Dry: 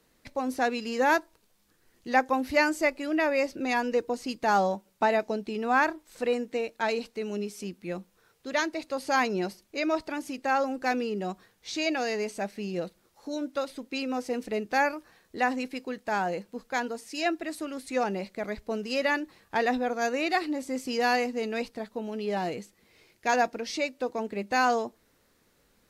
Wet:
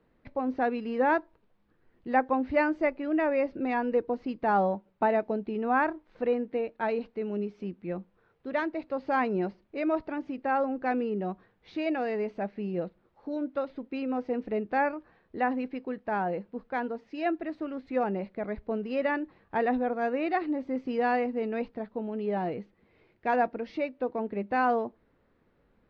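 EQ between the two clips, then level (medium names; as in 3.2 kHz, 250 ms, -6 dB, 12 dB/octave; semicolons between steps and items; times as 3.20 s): distance through air 230 m; tape spacing loss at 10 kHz 28 dB; +2.0 dB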